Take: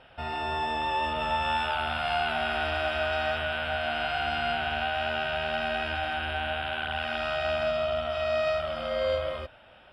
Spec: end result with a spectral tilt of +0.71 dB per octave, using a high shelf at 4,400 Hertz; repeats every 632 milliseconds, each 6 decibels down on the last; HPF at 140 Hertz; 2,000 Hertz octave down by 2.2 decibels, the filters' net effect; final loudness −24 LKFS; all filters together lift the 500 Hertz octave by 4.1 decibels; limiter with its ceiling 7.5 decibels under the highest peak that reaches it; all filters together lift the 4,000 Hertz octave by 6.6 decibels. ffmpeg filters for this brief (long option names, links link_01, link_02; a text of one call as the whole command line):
ffmpeg -i in.wav -af "highpass=140,equalizer=frequency=500:width_type=o:gain=6,equalizer=frequency=2000:width_type=o:gain=-9,equalizer=frequency=4000:width_type=o:gain=9,highshelf=frequency=4400:gain=9,alimiter=limit=-20.5dB:level=0:latency=1,aecho=1:1:632|1264|1896|2528|3160|3792:0.501|0.251|0.125|0.0626|0.0313|0.0157,volume=3dB" out.wav